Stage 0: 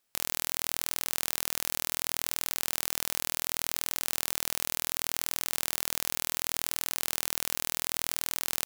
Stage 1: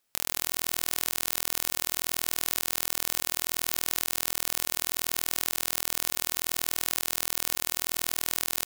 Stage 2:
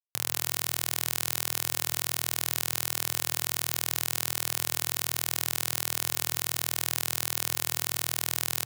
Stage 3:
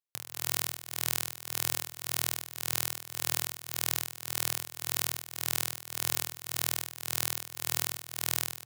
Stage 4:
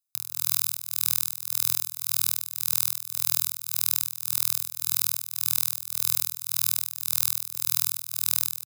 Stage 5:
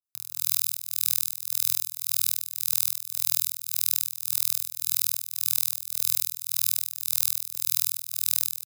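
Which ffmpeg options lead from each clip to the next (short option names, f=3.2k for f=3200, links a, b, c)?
-af "aecho=1:1:71|142|213|284|355:0.2|0.106|0.056|0.0297|0.0157,volume=1.5dB"
-af "equalizer=f=120:t=o:w=0.53:g=11.5,acrusher=bits=9:mix=0:aa=0.000001"
-af "tremolo=f=1.8:d=0.83"
-af "aecho=1:1:0.8:0.74,aexciter=amount=2.5:drive=7.6:freq=3.8k,volume=-5.5dB"
-af "adynamicequalizer=threshold=0.00282:dfrequency=1800:dqfactor=0.7:tfrequency=1800:tqfactor=0.7:attack=5:release=100:ratio=0.375:range=3.5:mode=boostabove:tftype=highshelf,volume=-7dB"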